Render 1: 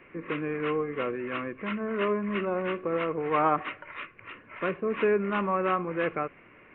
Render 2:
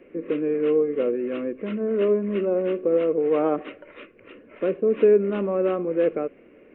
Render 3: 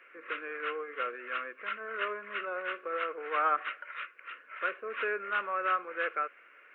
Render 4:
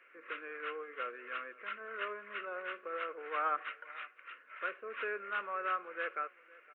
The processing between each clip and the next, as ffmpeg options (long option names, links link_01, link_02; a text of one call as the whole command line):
ffmpeg -i in.wav -af "equalizer=frequency=125:width_type=o:width=1:gain=-8,equalizer=frequency=250:width_type=o:width=1:gain=7,equalizer=frequency=500:width_type=o:width=1:gain=11,equalizer=frequency=1000:width_type=o:width=1:gain=-11,equalizer=frequency=2000:width_type=o:width=1:gain=-6" out.wav
ffmpeg -i in.wav -af "highpass=frequency=1400:width_type=q:width=3.9" out.wav
ffmpeg -i in.wav -filter_complex "[0:a]asplit=2[link_01][link_02];[link_02]adelay=513.1,volume=-21dB,highshelf=frequency=4000:gain=-11.5[link_03];[link_01][link_03]amix=inputs=2:normalize=0,volume=-5.5dB" out.wav